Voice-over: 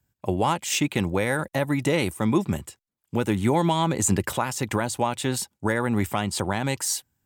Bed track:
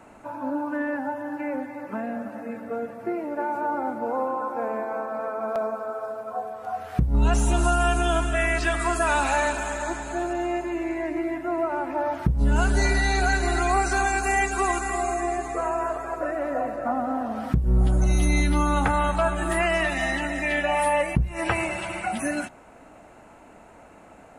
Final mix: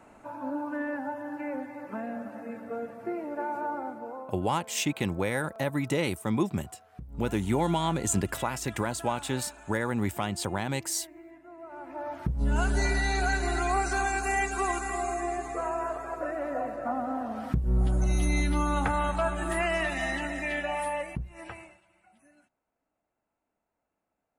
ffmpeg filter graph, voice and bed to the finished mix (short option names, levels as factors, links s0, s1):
-filter_complex "[0:a]adelay=4050,volume=0.562[s0];[1:a]volume=3.76,afade=t=out:st=3.59:d=0.78:silence=0.149624,afade=t=in:st=11.59:d=0.98:silence=0.149624,afade=t=out:st=20.26:d=1.55:silence=0.0334965[s1];[s0][s1]amix=inputs=2:normalize=0"